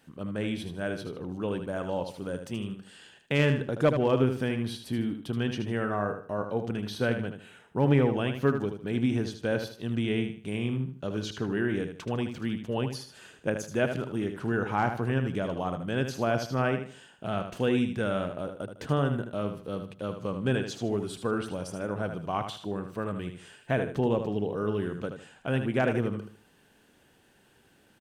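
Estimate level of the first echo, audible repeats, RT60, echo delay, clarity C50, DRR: −8.0 dB, 3, no reverb audible, 77 ms, no reverb audible, no reverb audible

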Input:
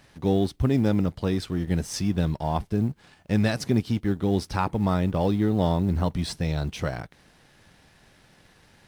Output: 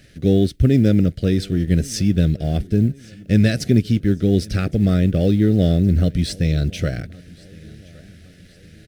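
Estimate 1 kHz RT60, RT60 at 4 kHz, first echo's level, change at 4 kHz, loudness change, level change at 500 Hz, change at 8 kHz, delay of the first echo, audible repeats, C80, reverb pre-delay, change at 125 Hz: no reverb audible, no reverb audible, −24.0 dB, +5.5 dB, +7.5 dB, +5.0 dB, +5.5 dB, 1,116 ms, 2, no reverb audible, no reverb audible, +8.5 dB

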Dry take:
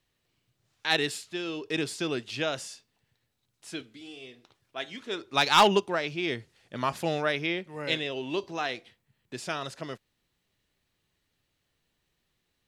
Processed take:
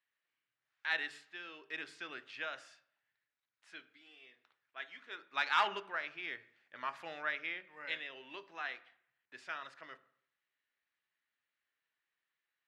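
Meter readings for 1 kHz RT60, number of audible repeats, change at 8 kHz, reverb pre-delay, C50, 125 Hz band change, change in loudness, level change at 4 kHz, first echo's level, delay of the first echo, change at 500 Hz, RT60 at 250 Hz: 0.70 s, no echo audible, below −20 dB, 3 ms, 18.0 dB, below −25 dB, −11.0 dB, −14.0 dB, no echo audible, no echo audible, −19.0 dB, 0.60 s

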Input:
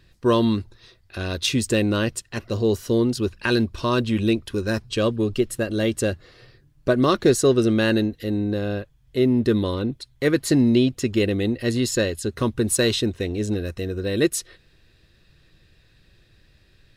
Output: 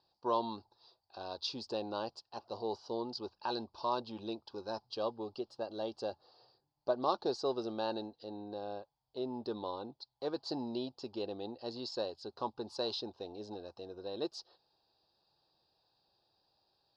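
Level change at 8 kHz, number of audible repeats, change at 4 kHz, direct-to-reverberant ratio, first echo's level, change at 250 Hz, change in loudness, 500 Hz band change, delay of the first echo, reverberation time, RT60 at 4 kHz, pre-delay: below −25 dB, no echo audible, −14.0 dB, no reverb audible, no echo audible, −21.5 dB, −17.5 dB, −15.5 dB, no echo audible, no reverb audible, no reverb audible, no reverb audible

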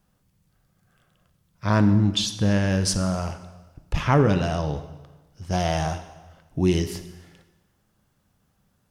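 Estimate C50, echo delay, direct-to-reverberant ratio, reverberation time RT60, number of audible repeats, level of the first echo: 11.5 dB, no echo audible, 9.0 dB, 1.2 s, no echo audible, no echo audible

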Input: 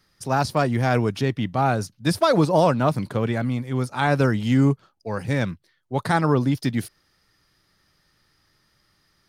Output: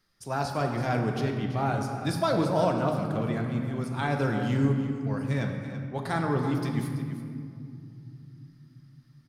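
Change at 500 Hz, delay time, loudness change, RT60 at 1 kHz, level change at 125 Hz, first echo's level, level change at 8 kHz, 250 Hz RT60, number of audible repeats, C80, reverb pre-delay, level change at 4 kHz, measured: −6.5 dB, 333 ms, −6.0 dB, 2.1 s, −5.0 dB, −12.0 dB, −7.5 dB, 4.3 s, 1, 5.0 dB, 3 ms, −7.5 dB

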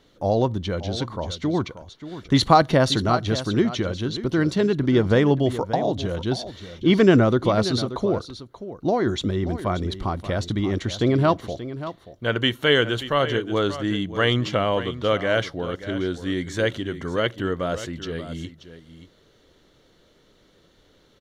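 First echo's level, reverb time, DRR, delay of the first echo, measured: −13.0 dB, no reverb audible, no reverb audible, 582 ms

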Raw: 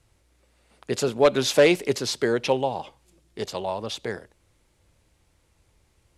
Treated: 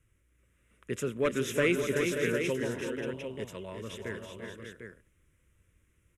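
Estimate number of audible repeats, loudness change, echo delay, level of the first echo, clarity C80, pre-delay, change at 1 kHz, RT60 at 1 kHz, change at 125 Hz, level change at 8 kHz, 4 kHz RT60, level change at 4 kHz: 5, −8.0 dB, 344 ms, −10.5 dB, no reverb audible, no reverb audible, −13.5 dB, no reverb audible, −3.5 dB, −8.5 dB, no reverb audible, −12.0 dB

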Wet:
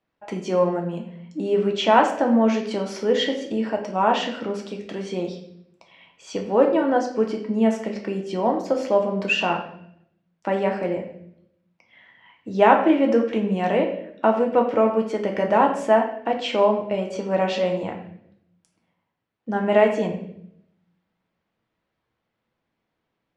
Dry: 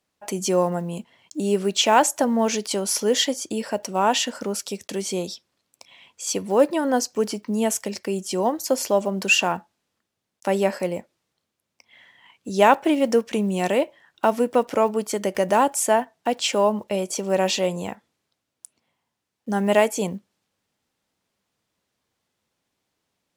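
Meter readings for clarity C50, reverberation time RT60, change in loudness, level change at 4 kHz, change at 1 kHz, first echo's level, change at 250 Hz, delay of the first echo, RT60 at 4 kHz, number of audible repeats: 7.5 dB, 0.70 s, +0.5 dB, −5.0 dB, +1.0 dB, no echo audible, +2.0 dB, no echo audible, 0.65 s, no echo audible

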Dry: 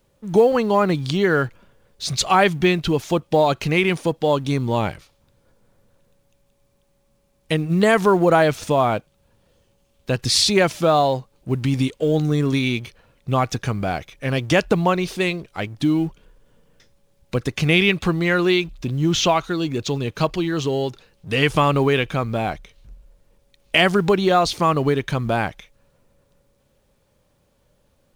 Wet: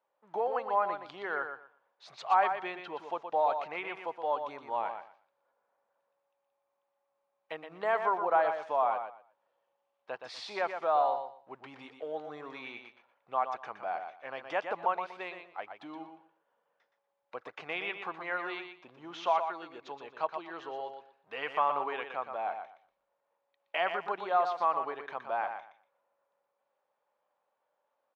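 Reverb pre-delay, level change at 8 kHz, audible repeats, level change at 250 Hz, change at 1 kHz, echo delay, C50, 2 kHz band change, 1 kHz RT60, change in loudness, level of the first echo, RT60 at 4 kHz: no reverb audible, below −30 dB, 2, −28.5 dB, −7.5 dB, 120 ms, no reverb audible, −14.5 dB, no reverb audible, −13.5 dB, −7.5 dB, no reverb audible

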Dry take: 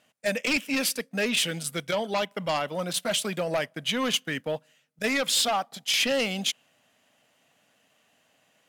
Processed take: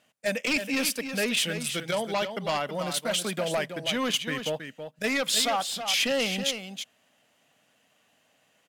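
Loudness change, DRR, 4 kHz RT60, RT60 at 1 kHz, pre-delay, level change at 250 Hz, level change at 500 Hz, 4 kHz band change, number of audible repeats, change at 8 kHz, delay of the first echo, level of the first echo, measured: −0.5 dB, no reverb audible, no reverb audible, no reverb audible, no reverb audible, −0.5 dB, −0.5 dB, −0.5 dB, 1, −0.5 dB, 323 ms, −8.5 dB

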